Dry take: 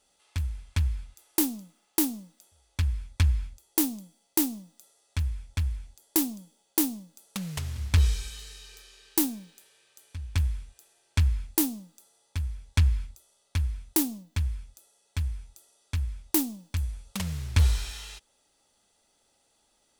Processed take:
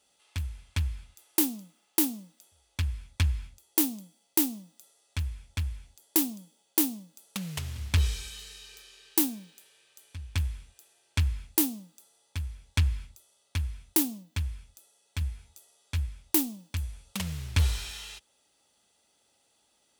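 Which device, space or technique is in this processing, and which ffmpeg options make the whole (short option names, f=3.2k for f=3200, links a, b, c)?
presence and air boost: -filter_complex "[0:a]highpass=64,asettb=1/sr,asplit=3[a][b][c];[a]atrim=end=15.204[d];[b]atrim=start=15.2:end=16.09,asetpts=PTS-STARTPTS,afade=t=in:d=0.004:c=qsin,afade=t=out:st=0.886:d=0.004:c=qsin,asplit=2[e][f];[f]adelay=13,volume=-7.5dB[g];[e][g]amix=inputs=2:normalize=0,atrim=end_sample=39249[h];[c]atrim=start=16.086[i];[d][h]acrossfade=d=0.004:c1=hsin:c2=qsin[j];[j][i]acrossfade=d=0.004:c1=qsin:c2=hsin,equalizer=f=2.9k:t=o:w=0.83:g=3.5,highshelf=f=12k:g=4,volume=-1.5dB"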